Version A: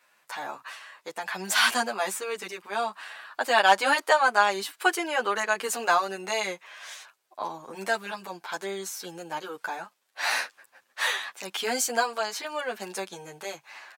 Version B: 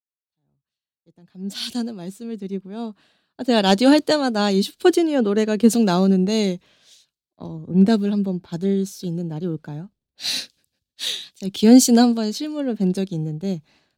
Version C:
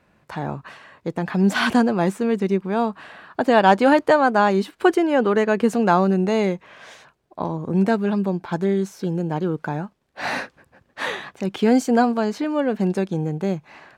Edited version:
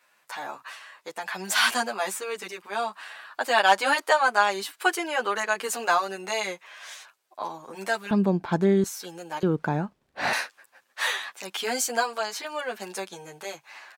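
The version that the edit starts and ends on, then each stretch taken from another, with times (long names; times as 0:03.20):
A
0:08.11–0:08.84: punch in from C
0:09.43–0:10.33: punch in from C
not used: B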